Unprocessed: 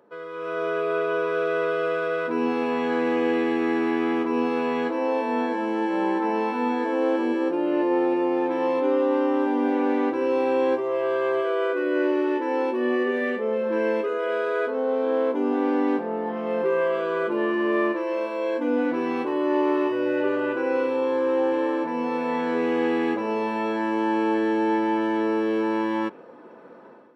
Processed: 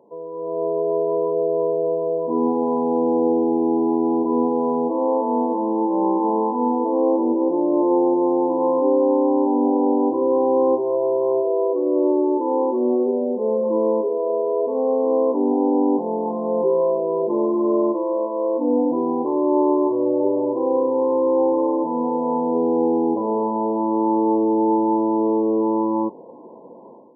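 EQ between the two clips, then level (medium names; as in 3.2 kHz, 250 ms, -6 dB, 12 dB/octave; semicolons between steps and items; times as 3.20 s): brick-wall FIR low-pass 1.1 kHz; +4.5 dB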